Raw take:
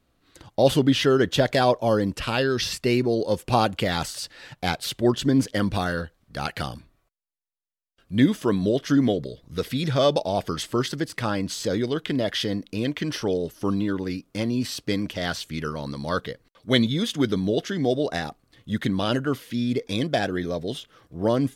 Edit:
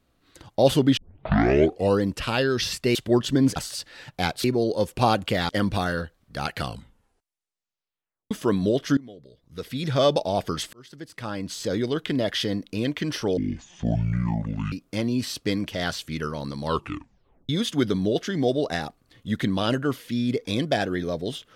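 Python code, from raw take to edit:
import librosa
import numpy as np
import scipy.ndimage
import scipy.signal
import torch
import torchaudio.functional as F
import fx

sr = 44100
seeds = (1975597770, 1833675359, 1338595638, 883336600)

y = fx.edit(x, sr, fx.tape_start(start_s=0.97, length_s=1.04),
    fx.swap(start_s=2.95, length_s=1.05, other_s=4.88, other_length_s=0.61),
    fx.tape_stop(start_s=6.57, length_s=1.74),
    fx.fade_in_from(start_s=8.97, length_s=1.02, curve='qua', floor_db=-23.0),
    fx.fade_in_span(start_s=10.73, length_s=1.16),
    fx.speed_span(start_s=13.37, length_s=0.77, speed=0.57),
    fx.tape_stop(start_s=16.05, length_s=0.86), tone=tone)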